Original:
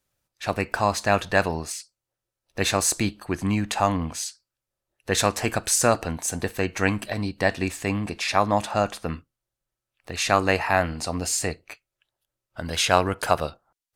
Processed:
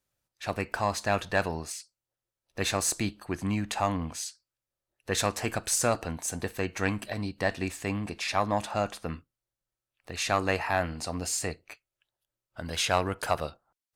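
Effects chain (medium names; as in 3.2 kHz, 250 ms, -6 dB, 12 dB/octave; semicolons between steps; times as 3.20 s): single-diode clipper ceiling -5 dBFS; trim -5 dB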